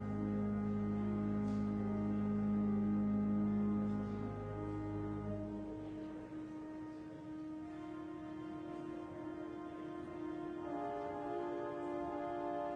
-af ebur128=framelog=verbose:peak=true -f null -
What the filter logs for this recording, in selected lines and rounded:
Integrated loudness:
  I:         -40.8 LUFS
  Threshold: -50.8 LUFS
Loudness range:
  LRA:        10.2 LU
  Threshold: -61.2 LUFS
  LRA low:   -47.3 LUFS
  LRA high:  -37.1 LUFS
True peak:
  Peak:      -27.9 dBFS